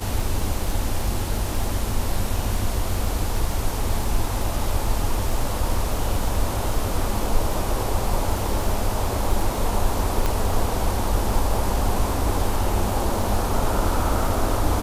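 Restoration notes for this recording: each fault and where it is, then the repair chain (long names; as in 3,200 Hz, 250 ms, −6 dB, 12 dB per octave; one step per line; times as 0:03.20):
surface crackle 29 per second −27 dBFS
0:10.26: click −9 dBFS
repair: click removal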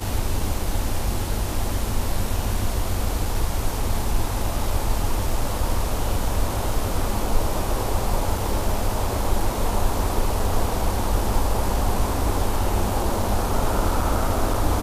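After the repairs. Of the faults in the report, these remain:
0:10.26: click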